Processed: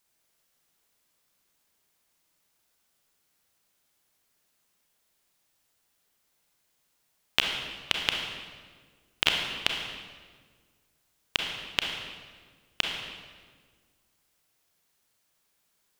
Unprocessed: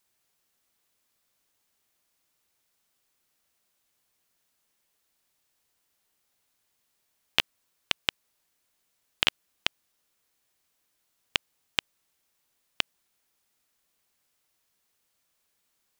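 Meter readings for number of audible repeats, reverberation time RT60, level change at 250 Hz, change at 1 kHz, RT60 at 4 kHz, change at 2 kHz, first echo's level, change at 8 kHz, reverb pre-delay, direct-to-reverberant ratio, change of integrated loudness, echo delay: no echo audible, 1.6 s, +3.0 dB, +2.5 dB, 1.2 s, +2.5 dB, no echo audible, +2.0 dB, 29 ms, 1.0 dB, +1.0 dB, no echo audible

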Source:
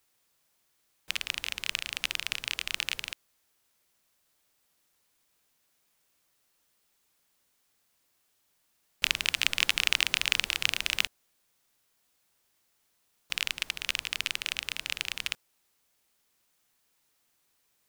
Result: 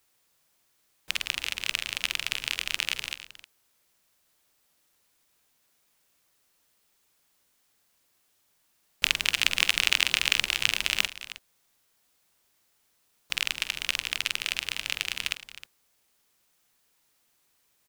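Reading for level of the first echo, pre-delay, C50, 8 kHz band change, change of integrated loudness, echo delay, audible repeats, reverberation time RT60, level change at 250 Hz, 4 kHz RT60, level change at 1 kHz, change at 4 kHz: −14.0 dB, no reverb audible, no reverb audible, +3.0 dB, +2.5 dB, 47 ms, 3, no reverb audible, +3.0 dB, no reverb audible, +3.0 dB, +3.0 dB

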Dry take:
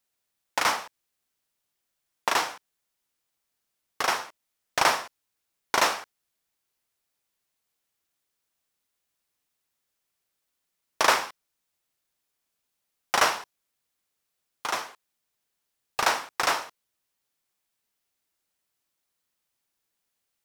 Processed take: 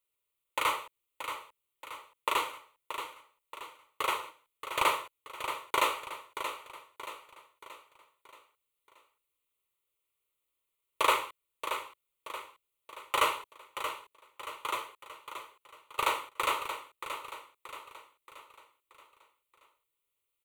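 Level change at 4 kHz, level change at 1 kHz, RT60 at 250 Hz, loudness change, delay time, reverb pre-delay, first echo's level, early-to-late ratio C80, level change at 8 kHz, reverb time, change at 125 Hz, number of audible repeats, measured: −5.5 dB, −3.5 dB, no reverb audible, −7.5 dB, 628 ms, no reverb audible, −9.0 dB, no reverb audible, −9.0 dB, no reverb audible, can't be measured, 4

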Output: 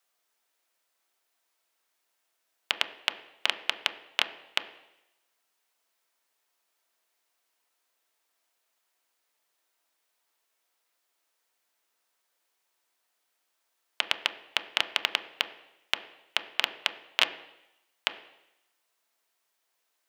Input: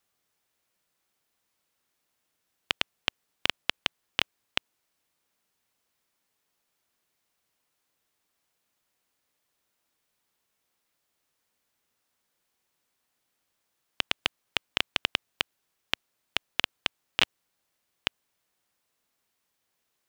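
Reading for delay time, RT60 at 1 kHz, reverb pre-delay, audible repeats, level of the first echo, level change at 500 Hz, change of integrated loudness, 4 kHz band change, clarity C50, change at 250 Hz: no echo audible, 0.90 s, 3 ms, no echo audible, no echo audible, 0.0 dB, +1.0 dB, +1.0 dB, 16.0 dB, −6.5 dB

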